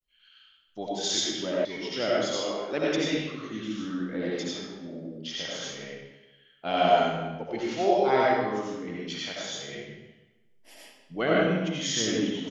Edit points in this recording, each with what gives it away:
1.65 s: sound stops dead

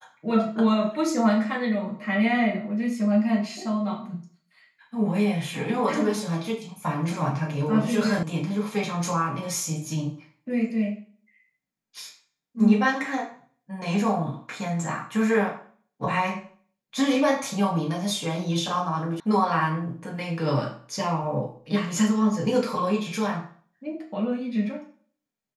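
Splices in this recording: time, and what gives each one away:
8.23 s: sound stops dead
19.20 s: sound stops dead

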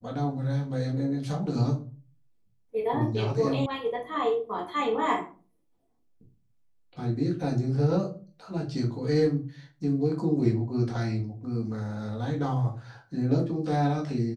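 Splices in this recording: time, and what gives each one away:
3.66 s: sound stops dead

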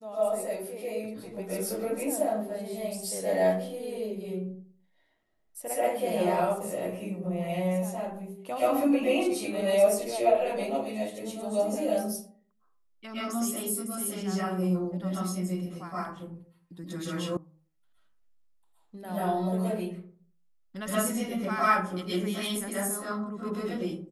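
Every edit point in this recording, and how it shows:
17.37 s: sound stops dead

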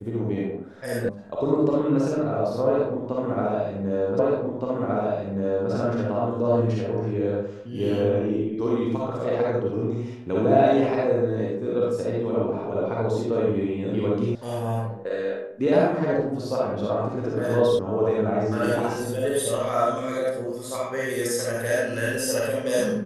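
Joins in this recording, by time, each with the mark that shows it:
1.09 s: sound stops dead
4.19 s: repeat of the last 1.52 s
14.35 s: sound stops dead
17.79 s: sound stops dead

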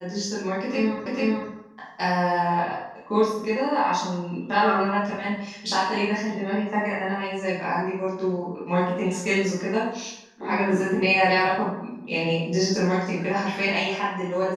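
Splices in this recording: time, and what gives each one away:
1.06 s: repeat of the last 0.44 s

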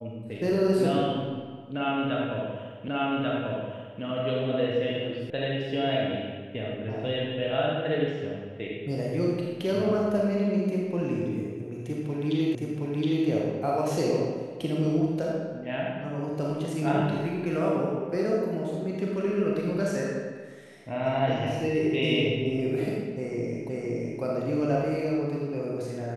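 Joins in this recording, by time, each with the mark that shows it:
2.88 s: repeat of the last 1.14 s
5.30 s: sound stops dead
12.55 s: repeat of the last 0.72 s
23.69 s: repeat of the last 0.52 s

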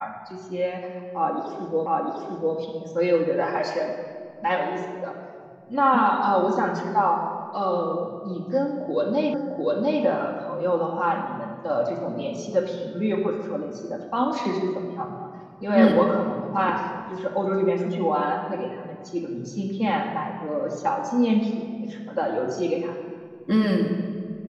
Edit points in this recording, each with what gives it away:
1.86 s: repeat of the last 0.7 s
9.34 s: repeat of the last 0.7 s

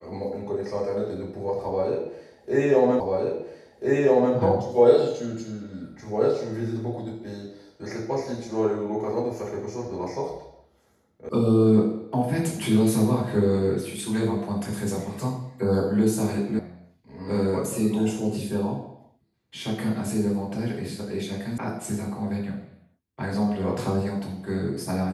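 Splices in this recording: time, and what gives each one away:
3.00 s: repeat of the last 1.34 s
11.29 s: sound stops dead
16.59 s: sound stops dead
21.58 s: sound stops dead

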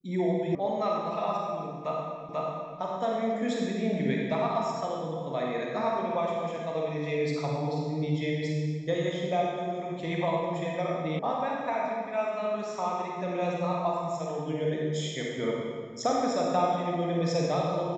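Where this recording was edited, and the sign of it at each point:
0.55 s: sound stops dead
2.29 s: repeat of the last 0.49 s
11.19 s: sound stops dead

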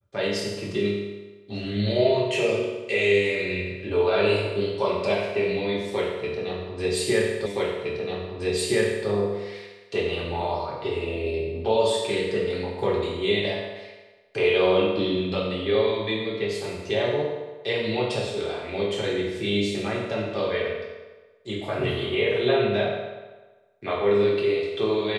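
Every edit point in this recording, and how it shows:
7.46 s: repeat of the last 1.62 s

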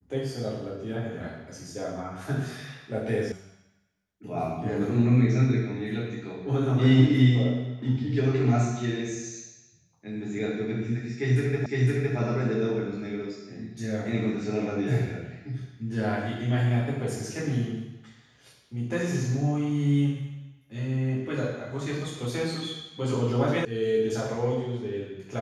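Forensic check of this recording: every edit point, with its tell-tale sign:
3.32 s: sound stops dead
11.66 s: repeat of the last 0.51 s
23.65 s: sound stops dead

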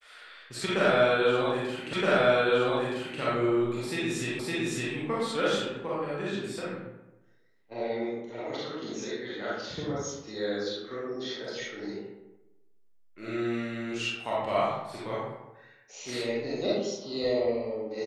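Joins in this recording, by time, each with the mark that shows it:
1.93 s: repeat of the last 1.27 s
4.39 s: repeat of the last 0.56 s

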